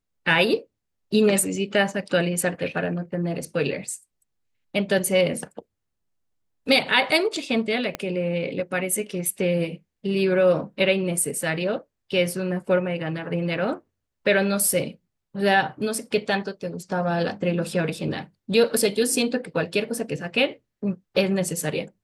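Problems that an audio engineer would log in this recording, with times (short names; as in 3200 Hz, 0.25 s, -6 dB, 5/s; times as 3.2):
7.95 pop -12 dBFS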